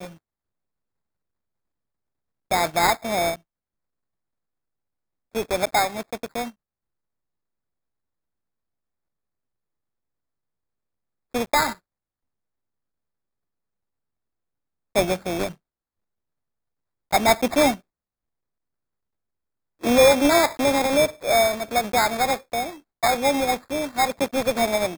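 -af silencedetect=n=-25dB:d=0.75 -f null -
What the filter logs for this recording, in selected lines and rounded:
silence_start: 0.00
silence_end: 2.51 | silence_duration: 2.51
silence_start: 3.33
silence_end: 5.36 | silence_duration: 2.02
silence_start: 6.45
silence_end: 11.35 | silence_duration: 4.90
silence_start: 11.72
silence_end: 14.96 | silence_duration: 3.24
silence_start: 15.47
silence_end: 17.13 | silence_duration: 1.65
silence_start: 17.73
silence_end: 19.84 | silence_duration: 2.11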